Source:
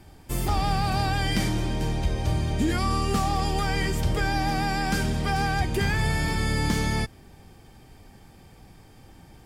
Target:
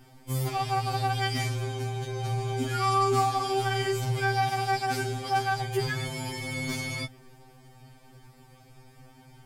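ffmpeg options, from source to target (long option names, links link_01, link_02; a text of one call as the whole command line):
ffmpeg -i in.wav -filter_complex "[0:a]asettb=1/sr,asplit=3[link_01][link_02][link_03];[link_01]atrim=end=2.354[link_04];[link_02]atrim=start=2.35:end=4.76,asetpts=PTS-STARTPTS,afade=type=in:duration=0.004:curve=qsin,afade=type=out:start_time=2.406:duration=0.004:curve=qsin,asplit=2[link_05][link_06];[link_06]adelay=41,volume=-5dB[link_07];[link_05][link_07]amix=inputs=2:normalize=0,atrim=end_sample=106281[link_08];[link_03]atrim=start=4.756[link_09];[link_04][link_08]acrossfade=duration=0.004:curve1=hsin:curve2=qsin[link_10];[link_10][link_09]acrossfade=duration=0.004:curve1=qsin:curve2=hsin,asoftclip=type=tanh:threshold=-15.5dB,afftfilt=real='re*2.45*eq(mod(b,6),0)':imag='im*2.45*eq(mod(b,6),0)':win_size=2048:overlap=0.75" out.wav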